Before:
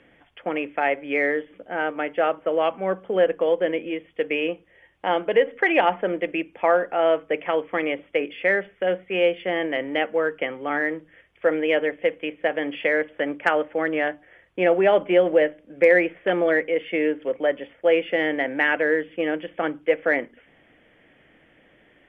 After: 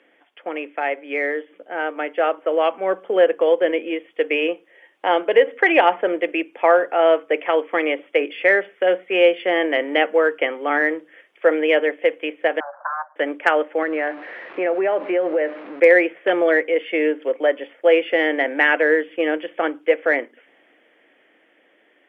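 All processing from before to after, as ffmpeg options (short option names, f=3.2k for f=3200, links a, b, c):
-filter_complex "[0:a]asettb=1/sr,asplit=3[a][b][c];[a]atrim=end=12.604[d];[b]atrim=start=12.6:end=13.16,asetpts=PTS-STARTPTS,afade=t=in:d=0.004:c=qsin,afade=t=out:st=0.556:d=0.004:c=qsin,aeval=exprs='abs(val(0))':c=same,asuperpass=centerf=960:order=20:qfactor=0.87[e];[c]atrim=start=13.156[f];[d][e]acrossfade=d=0.004:c1=hsin:c2=qsin[g];[g][f]acrossfade=d=0.004:c1=qsin:c2=hsin,asettb=1/sr,asplit=3[h][i][j];[h]atrim=end=13.824[k];[i]atrim=start=13.82:end=15.8,asetpts=PTS-STARTPTS,afade=t=in:d=0.004:c=qsin,afade=t=out:st=1.976:d=0.004:c=qsin,aeval=exprs='val(0)+0.5*0.0211*sgn(val(0))':c=same,acompressor=threshold=-22dB:ratio=2.5:attack=3.2:release=140:knee=1:detection=peak,lowpass=f=2.5k:w=0.5412,lowpass=f=2.5k:w=1.3066[l];[j]atrim=start=15.796[m];[k][l]acrossfade=d=0.004:c1=hsin:c2=qsin[n];[n][m]acrossfade=d=0.004:c1=qsin:c2=hsin,highpass=f=290:w=0.5412,highpass=f=290:w=1.3066,dynaudnorm=f=230:g=21:m=11.5dB,volume=-1dB"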